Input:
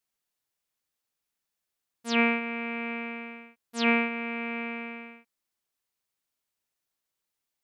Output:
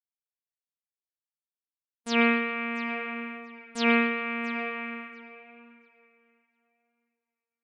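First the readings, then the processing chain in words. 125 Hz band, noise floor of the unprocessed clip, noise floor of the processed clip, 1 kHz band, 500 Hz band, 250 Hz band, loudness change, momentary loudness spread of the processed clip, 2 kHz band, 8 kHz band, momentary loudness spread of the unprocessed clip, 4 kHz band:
n/a, -85 dBFS, under -85 dBFS, +2.5 dB, +2.0 dB, +1.5 dB, +1.5 dB, 18 LU, +1.5 dB, 0.0 dB, 19 LU, +1.0 dB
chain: gate -43 dBFS, range -36 dB; tape echo 0.683 s, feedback 22%, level -15.5 dB, low-pass 4800 Hz; spring tank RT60 1.1 s, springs 51/58 ms, chirp 80 ms, DRR 3.5 dB

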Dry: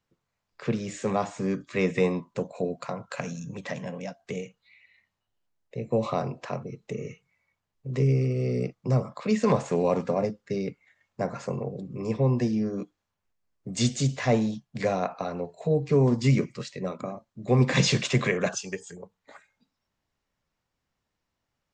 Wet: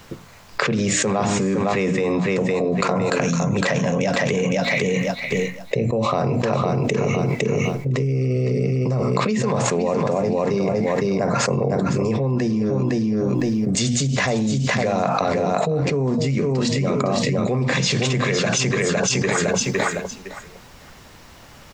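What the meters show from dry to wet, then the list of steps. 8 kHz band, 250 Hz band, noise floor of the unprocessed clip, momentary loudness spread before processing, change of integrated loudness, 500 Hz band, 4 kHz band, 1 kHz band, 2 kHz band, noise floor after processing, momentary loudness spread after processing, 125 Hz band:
+12.5 dB, +8.0 dB, -83 dBFS, 14 LU, +7.0 dB, +8.0 dB, +9.5 dB, +10.0 dB, +11.0 dB, -45 dBFS, 3 LU, +6.0 dB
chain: notches 60/120/180/240/300 Hz; on a send: feedback echo 0.509 s, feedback 17%, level -8.5 dB; on the sum: fast leveller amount 100%; gain -3.5 dB

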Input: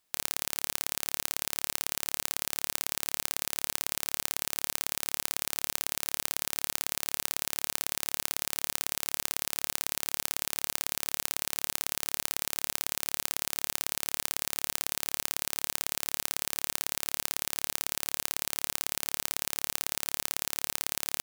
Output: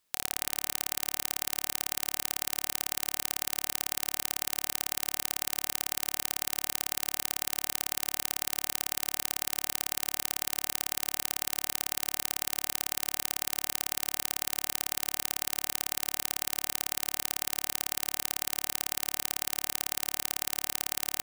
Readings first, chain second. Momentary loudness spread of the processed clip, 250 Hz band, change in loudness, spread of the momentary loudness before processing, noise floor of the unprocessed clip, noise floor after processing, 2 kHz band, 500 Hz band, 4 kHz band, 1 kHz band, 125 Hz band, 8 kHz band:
0 LU, +0.5 dB, 0.0 dB, 0 LU, -75 dBFS, -57 dBFS, 0.0 dB, 0.0 dB, +0.5 dB, -0.5 dB, -0.5 dB, 0.0 dB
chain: notch 750 Hz, Q 12; on a send: split-band echo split 2300 Hz, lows 80 ms, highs 0.221 s, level -13.5 dB

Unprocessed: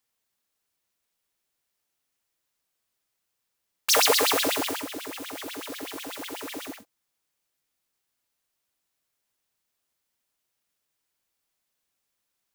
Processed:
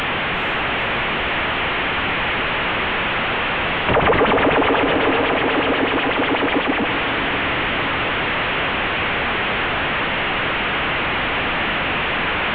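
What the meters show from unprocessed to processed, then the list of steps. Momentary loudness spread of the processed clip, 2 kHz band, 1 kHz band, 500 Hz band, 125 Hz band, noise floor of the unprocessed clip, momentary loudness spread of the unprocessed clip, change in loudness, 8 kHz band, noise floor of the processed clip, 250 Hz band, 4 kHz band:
4 LU, +19.5 dB, +17.0 dB, +14.5 dB, +31.0 dB, -81 dBFS, 17 LU, +6.5 dB, under -30 dB, -21 dBFS, +17.5 dB, +9.5 dB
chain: delta modulation 16 kbps, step -31.5 dBFS; diffused feedback echo 0.472 s, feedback 65%, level -10 dB; maximiser +23.5 dB; gain -6 dB

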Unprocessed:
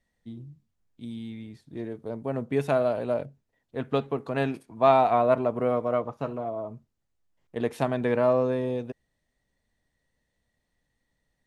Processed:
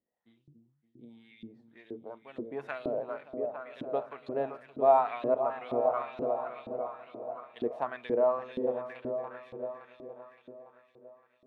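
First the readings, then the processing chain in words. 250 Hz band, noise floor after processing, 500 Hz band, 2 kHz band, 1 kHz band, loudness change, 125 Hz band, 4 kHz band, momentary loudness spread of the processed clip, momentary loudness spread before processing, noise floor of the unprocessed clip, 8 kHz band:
-9.5 dB, -72 dBFS, -4.5 dB, -7.5 dB, -4.5 dB, -6.0 dB, -18.0 dB, under -10 dB, 20 LU, 20 LU, -79 dBFS, n/a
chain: repeats that get brighter 0.284 s, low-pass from 200 Hz, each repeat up 2 oct, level -3 dB; LFO band-pass saw up 2.1 Hz 300–3900 Hz

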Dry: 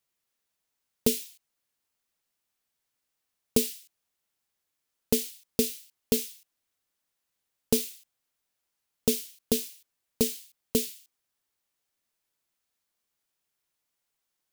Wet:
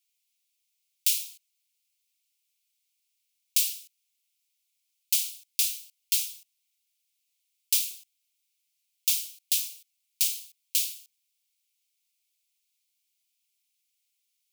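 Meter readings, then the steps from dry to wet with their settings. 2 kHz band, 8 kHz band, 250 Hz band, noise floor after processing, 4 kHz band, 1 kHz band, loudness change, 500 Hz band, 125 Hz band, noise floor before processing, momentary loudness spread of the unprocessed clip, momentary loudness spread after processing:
+4.0 dB, +5.0 dB, under -40 dB, -78 dBFS, +5.0 dB, under -35 dB, +2.5 dB, under -40 dB, under -40 dB, -83 dBFS, 13 LU, 12 LU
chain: steep high-pass 2200 Hz 72 dB/oct; gain +5 dB

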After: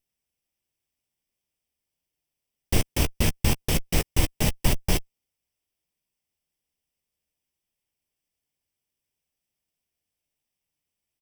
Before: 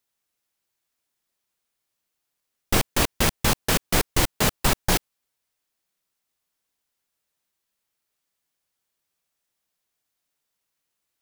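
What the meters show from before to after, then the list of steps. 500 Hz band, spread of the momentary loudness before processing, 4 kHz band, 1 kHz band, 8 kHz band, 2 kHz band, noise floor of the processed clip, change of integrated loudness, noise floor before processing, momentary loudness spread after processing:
-4.5 dB, 3 LU, -5.0 dB, -8.5 dB, -5.0 dB, -6.5 dB, under -85 dBFS, -3.0 dB, -81 dBFS, 3 LU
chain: minimum comb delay 0.37 ms; low shelf 140 Hz +9 dB; doubler 13 ms -12 dB; gain -4 dB

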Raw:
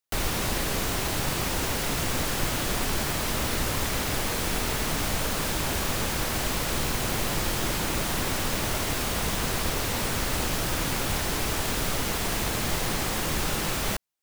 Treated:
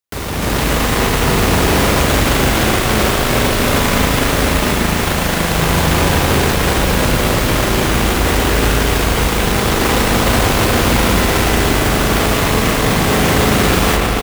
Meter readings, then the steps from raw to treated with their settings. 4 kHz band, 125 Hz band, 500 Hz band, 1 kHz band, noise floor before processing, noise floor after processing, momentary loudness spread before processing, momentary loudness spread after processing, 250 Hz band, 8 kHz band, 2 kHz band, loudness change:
+11.5 dB, +15.5 dB, +16.0 dB, +14.5 dB, -29 dBFS, -17 dBFS, 0 LU, 2 LU, +16.0 dB, +9.0 dB, +14.0 dB, +13.0 dB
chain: octaver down 2 oct, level +2 dB; on a send: echo 0.299 s -4.5 dB; on the sum: spring tank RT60 4 s, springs 37/42 ms, chirp 35 ms, DRR -2.5 dB; in parallel at -8 dB: Schmitt trigger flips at -25 dBFS; on the sum: HPF 58 Hz 12 dB/oct; AGC

